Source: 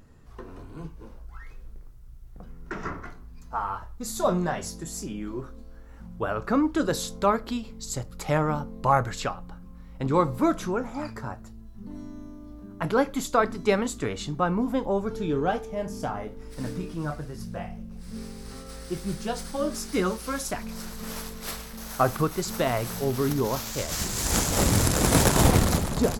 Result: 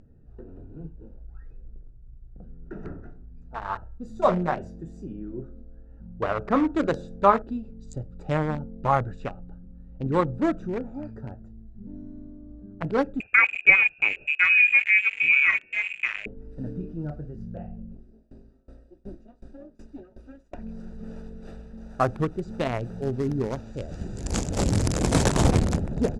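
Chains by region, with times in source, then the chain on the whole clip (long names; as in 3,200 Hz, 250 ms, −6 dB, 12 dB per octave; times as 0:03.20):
0:03.65–0:07.42: hum removal 70.57 Hz, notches 38 + dynamic equaliser 1,000 Hz, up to +7 dB, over −37 dBFS, Q 0.75
0:13.20–0:16.26: high-pass filter 48 Hz + parametric band 230 Hz +9 dB 2.8 octaves + voice inversion scrambler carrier 2,700 Hz
0:17.94–0:20.58: lower of the sound and its delayed copy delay 3.2 ms + tremolo with a ramp in dB decaying 2.7 Hz, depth 25 dB
whole clip: adaptive Wiener filter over 41 samples; low-pass filter 8,800 Hz 24 dB per octave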